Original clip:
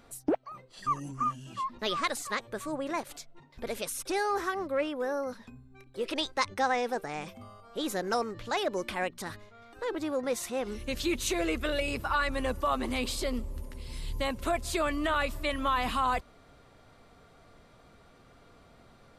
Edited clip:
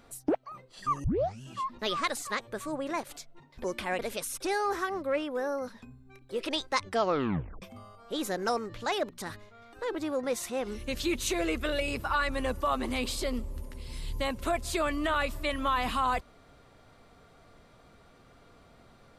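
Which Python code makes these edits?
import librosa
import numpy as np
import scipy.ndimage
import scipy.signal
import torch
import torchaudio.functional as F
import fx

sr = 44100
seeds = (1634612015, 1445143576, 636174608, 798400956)

y = fx.edit(x, sr, fx.tape_start(start_s=1.04, length_s=0.37),
    fx.tape_stop(start_s=6.52, length_s=0.75),
    fx.move(start_s=8.74, length_s=0.35, to_s=3.64), tone=tone)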